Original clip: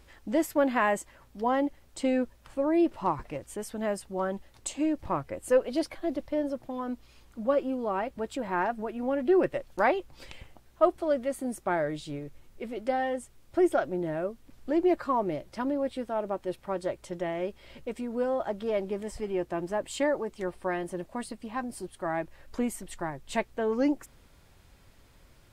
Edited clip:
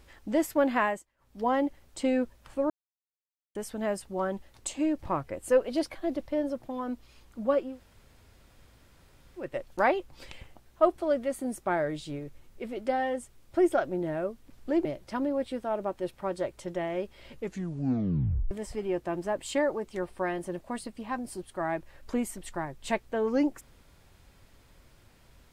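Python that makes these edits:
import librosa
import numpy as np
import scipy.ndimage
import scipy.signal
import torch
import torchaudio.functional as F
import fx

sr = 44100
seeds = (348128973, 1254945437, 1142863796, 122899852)

y = fx.edit(x, sr, fx.fade_down_up(start_s=0.8, length_s=0.63, db=-23.0, fade_s=0.26),
    fx.silence(start_s=2.7, length_s=0.85),
    fx.room_tone_fill(start_s=7.68, length_s=1.8, crossfade_s=0.24),
    fx.cut(start_s=14.85, length_s=0.45),
    fx.tape_stop(start_s=17.78, length_s=1.18), tone=tone)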